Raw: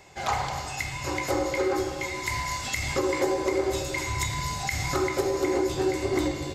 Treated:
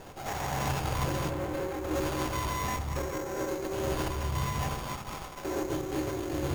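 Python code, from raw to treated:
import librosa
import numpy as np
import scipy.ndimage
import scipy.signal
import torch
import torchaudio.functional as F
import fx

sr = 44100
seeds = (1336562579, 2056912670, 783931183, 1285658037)

y = fx.high_shelf_res(x, sr, hz=1800.0, db=-12.0, q=3.0, at=(2.56, 3.38))
y = fx.echo_multitap(y, sr, ms=(93, 123, 137), db=(-10.5, -17.5, -5.0))
y = fx.step_gate(y, sr, bpm=125, pattern='x..xxxxxxxx', floor_db=-12.0, edge_ms=4.5)
y = fx.over_compress(y, sr, threshold_db=-32.0, ratio=-1.0)
y = 10.0 ** (-27.5 / 20.0) * np.tanh(y / 10.0 ** (-27.5 / 20.0))
y = fx.highpass(y, sr, hz=870.0, slope=24, at=(4.69, 5.45))
y = y + 10.0 ** (-13.0 / 20.0) * np.pad(y, (int(351 * sr / 1000.0), 0))[:len(y)]
y = fx.room_shoebox(y, sr, seeds[0], volume_m3=69.0, walls='mixed', distance_m=0.42)
y = fx.sample_hold(y, sr, seeds[1], rate_hz=6700.0, jitter_pct=0)
y = fx.peak_eq(y, sr, hz=5900.0, db=fx.line((1.29, -12.5), (1.94, -5.0)), octaves=2.2, at=(1.29, 1.94), fade=0.02)
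y = fx.running_max(y, sr, window=17)
y = F.gain(torch.from_numpy(y), 2.0).numpy()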